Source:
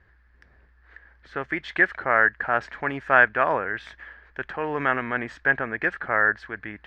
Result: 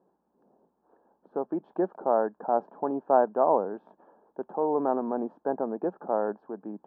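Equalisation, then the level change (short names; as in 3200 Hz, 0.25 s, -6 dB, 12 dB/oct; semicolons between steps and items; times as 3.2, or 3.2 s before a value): elliptic band-pass 190–890 Hz, stop band 40 dB; +3.0 dB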